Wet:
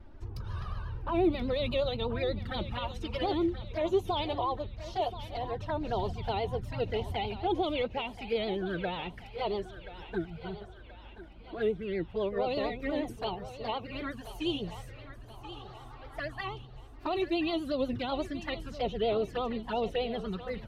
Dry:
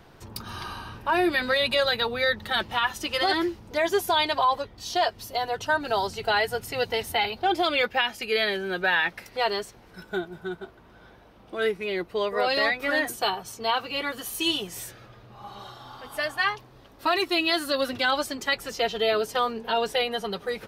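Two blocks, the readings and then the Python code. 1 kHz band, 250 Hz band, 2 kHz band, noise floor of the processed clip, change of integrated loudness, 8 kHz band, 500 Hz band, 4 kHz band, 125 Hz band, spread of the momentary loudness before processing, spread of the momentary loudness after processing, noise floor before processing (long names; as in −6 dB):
−9.0 dB, −1.0 dB, −16.0 dB, −49 dBFS, −7.5 dB, below −20 dB, −4.5 dB, −12.5 dB, +5.5 dB, 14 LU, 15 LU, −52 dBFS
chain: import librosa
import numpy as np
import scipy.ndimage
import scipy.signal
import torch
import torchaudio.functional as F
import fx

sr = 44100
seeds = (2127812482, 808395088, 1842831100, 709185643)

p1 = fx.env_flanger(x, sr, rest_ms=3.7, full_db=-22.5)
p2 = fx.vibrato(p1, sr, rate_hz=8.3, depth_cents=99.0)
p3 = fx.riaa(p2, sr, side='playback')
p4 = p3 + fx.echo_thinned(p3, sr, ms=1029, feedback_pct=52, hz=470.0, wet_db=-12, dry=0)
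y = F.gain(torch.from_numpy(p4), -6.0).numpy()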